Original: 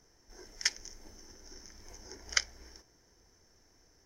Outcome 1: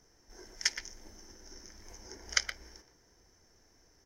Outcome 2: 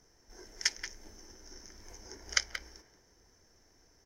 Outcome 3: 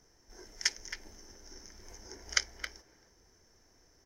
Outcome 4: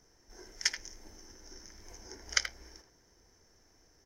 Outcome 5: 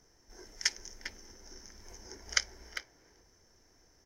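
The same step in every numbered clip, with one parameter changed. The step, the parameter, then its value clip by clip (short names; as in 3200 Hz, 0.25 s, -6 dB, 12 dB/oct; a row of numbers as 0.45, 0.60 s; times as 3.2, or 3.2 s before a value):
speakerphone echo, time: 120, 180, 270, 80, 400 ms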